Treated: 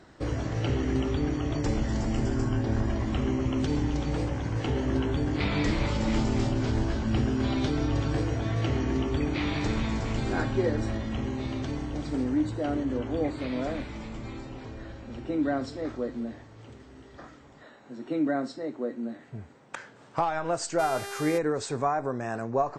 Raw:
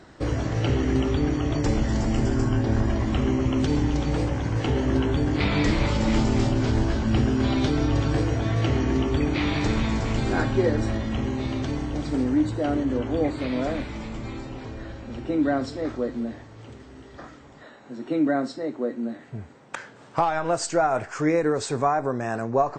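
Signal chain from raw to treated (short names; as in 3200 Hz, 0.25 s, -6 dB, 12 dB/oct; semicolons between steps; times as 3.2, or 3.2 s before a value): 20.78–21.37 buzz 400 Hz, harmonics 31, -34 dBFS -4 dB/oct; gain -4.5 dB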